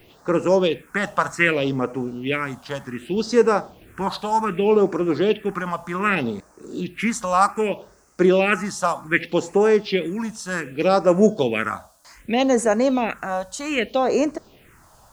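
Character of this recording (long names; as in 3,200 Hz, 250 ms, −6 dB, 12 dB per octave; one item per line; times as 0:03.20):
a quantiser's noise floor 10 bits, dither none
phaser sweep stages 4, 0.65 Hz, lowest notch 360–3,300 Hz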